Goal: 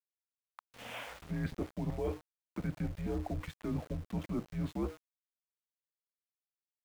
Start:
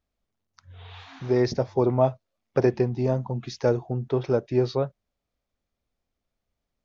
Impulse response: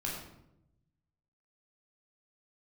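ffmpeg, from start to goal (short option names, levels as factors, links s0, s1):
-filter_complex "[0:a]acrossover=split=410|2200[s0][s1][s2];[s0]equalizer=f=200:w=2.9:g=-9.5[s3];[s1]alimiter=limit=0.0668:level=0:latency=1:release=18[s4];[s2]acontrast=45[s5];[s3][s4][s5]amix=inputs=3:normalize=0,bandreject=f=171.5:t=h:w=4,bandreject=f=343:t=h:w=4,bandreject=f=514.5:t=h:w=4,bandreject=f=686:t=h:w=4,highpass=f=150:t=q:w=0.5412,highpass=f=150:t=q:w=1.307,lowpass=f=3100:t=q:w=0.5176,lowpass=f=3100:t=q:w=0.7071,lowpass=f=3100:t=q:w=1.932,afreqshift=-210,areverse,acompressor=threshold=0.0178:ratio=12,areverse,equalizer=f=550:w=0.36:g=3,aeval=exprs='val(0)*gte(abs(val(0)),0.00355)':c=same,volume=1.12"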